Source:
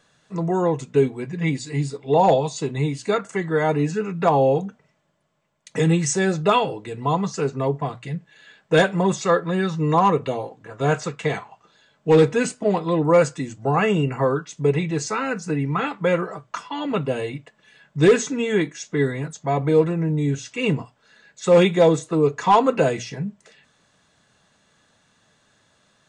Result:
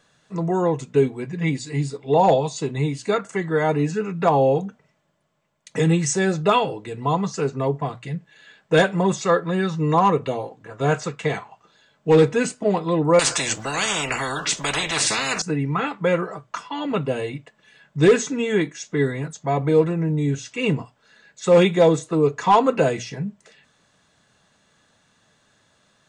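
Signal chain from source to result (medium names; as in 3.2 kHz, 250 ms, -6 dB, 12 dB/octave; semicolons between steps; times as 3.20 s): 13.19–15.42 s: spectrum-flattening compressor 10:1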